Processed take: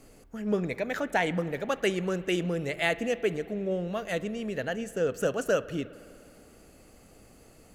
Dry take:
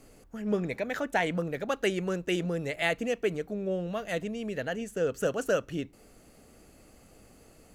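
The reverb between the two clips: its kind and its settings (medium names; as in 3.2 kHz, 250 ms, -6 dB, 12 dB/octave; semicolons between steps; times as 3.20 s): spring tank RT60 2.5 s, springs 50 ms, chirp 20 ms, DRR 16 dB; trim +1 dB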